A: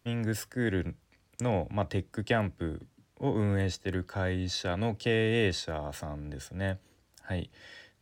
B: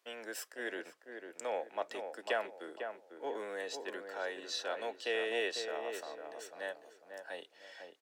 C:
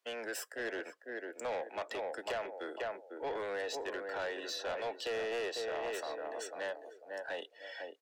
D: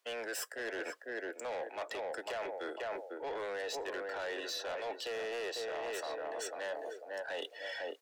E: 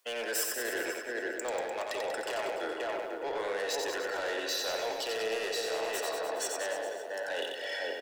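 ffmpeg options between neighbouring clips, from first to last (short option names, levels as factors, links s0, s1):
-filter_complex "[0:a]highpass=f=430:w=0.5412,highpass=f=430:w=1.3066,asplit=2[s0][s1];[s1]adelay=499,lowpass=f=1500:p=1,volume=0.501,asplit=2[s2][s3];[s3]adelay=499,lowpass=f=1500:p=1,volume=0.33,asplit=2[s4][s5];[s5]adelay=499,lowpass=f=1500:p=1,volume=0.33,asplit=2[s6][s7];[s7]adelay=499,lowpass=f=1500:p=1,volume=0.33[s8];[s2][s4][s6][s8]amix=inputs=4:normalize=0[s9];[s0][s9]amix=inputs=2:normalize=0,volume=0.596"
-filter_complex "[0:a]afftdn=nr=14:nf=-58,acrossover=split=390|1200[s0][s1][s2];[s0]acompressor=threshold=0.00141:ratio=4[s3];[s1]acompressor=threshold=0.0126:ratio=4[s4];[s2]acompressor=threshold=0.00501:ratio=4[s5];[s3][s4][s5]amix=inputs=3:normalize=0,asoftclip=type=tanh:threshold=0.01,volume=2.37"
-af "bass=f=250:g=-9,treble=f=4000:g=1,areverse,acompressor=threshold=0.00398:ratio=5,areverse,aeval=exprs='0.0112*(cos(1*acos(clip(val(0)/0.0112,-1,1)))-cos(1*PI/2))+0.000631*(cos(5*acos(clip(val(0)/0.0112,-1,1)))-cos(5*PI/2))':c=same,volume=2.82"
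-filter_complex "[0:a]highshelf=f=6700:g=8.5,bandreject=f=60:t=h:w=6,bandreject=f=120:t=h:w=6,asplit=2[s0][s1];[s1]aecho=0:1:90|189|297.9|417.7|549.5:0.631|0.398|0.251|0.158|0.1[s2];[s0][s2]amix=inputs=2:normalize=0,volume=1.41"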